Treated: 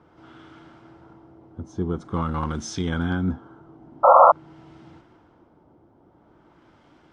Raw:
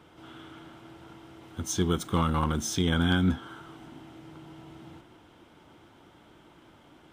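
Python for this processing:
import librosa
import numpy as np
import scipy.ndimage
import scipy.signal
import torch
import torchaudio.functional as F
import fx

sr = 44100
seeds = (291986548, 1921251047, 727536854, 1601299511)

y = fx.band_shelf(x, sr, hz=7200.0, db=15.5, octaves=1.7)
y = fx.spec_paint(y, sr, seeds[0], shape='noise', start_s=4.03, length_s=0.29, low_hz=500.0, high_hz=1400.0, level_db=-11.0)
y = fx.filter_lfo_lowpass(y, sr, shape='sine', hz=0.47, low_hz=720.0, high_hz=2300.0, q=0.84)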